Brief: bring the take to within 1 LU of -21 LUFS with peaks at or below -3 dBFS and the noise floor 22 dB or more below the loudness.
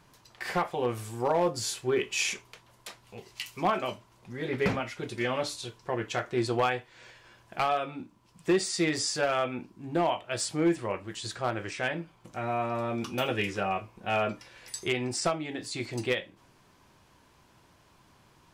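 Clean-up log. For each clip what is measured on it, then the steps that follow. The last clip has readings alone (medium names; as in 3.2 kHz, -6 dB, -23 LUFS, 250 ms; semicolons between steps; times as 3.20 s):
clipped samples 0.2%; clipping level -18.5 dBFS; loudness -30.5 LUFS; peak level -18.5 dBFS; loudness target -21.0 LUFS
-> clip repair -18.5 dBFS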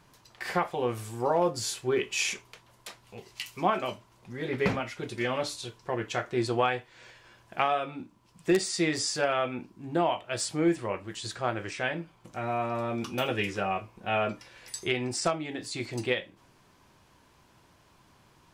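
clipped samples 0.0%; loudness -30.5 LUFS; peak level -10.0 dBFS; loudness target -21.0 LUFS
-> trim +9.5 dB; peak limiter -3 dBFS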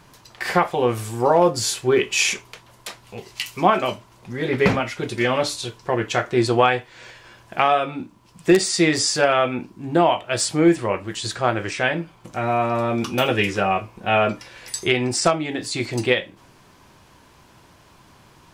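loudness -21.0 LUFS; peak level -3.0 dBFS; noise floor -52 dBFS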